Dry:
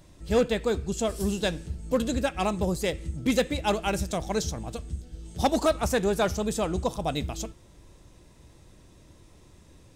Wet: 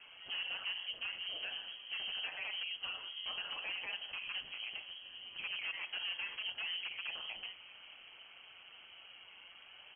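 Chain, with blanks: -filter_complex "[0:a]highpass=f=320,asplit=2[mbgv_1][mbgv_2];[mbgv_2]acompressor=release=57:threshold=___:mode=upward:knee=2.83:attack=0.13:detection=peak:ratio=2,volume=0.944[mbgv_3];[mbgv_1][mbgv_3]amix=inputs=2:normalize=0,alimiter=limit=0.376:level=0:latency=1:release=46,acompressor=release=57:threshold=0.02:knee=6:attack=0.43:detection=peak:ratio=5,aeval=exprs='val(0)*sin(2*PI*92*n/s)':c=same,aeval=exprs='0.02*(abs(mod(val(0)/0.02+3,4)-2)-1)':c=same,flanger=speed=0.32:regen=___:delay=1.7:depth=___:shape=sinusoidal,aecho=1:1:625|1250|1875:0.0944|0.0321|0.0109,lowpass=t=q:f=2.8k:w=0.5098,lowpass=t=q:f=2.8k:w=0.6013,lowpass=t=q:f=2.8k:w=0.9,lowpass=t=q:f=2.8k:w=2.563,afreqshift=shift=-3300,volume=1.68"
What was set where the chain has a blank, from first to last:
0.00562, -51, 7.7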